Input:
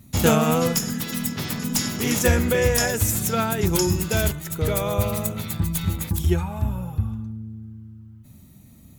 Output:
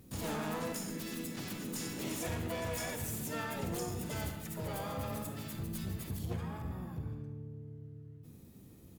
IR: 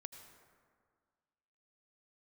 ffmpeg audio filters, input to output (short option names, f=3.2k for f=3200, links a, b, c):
-filter_complex "[0:a]asoftclip=type=tanh:threshold=-20.5dB,acompressor=threshold=-40dB:ratio=1.5,aresample=32000,aresample=44100,asplit=3[a][b][c];[b]asetrate=58866,aresample=44100,atempo=0.749154,volume=-1dB[d];[c]asetrate=88200,aresample=44100,atempo=0.5,volume=-7dB[e];[a][d][e]amix=inputs=3:normalize=0[f];[1:a]atrim=start_sample=2205,asetrate=83790,aresample=44100[g];[f][g]afir=irnorm=-1:irlink=0,volume=1dB"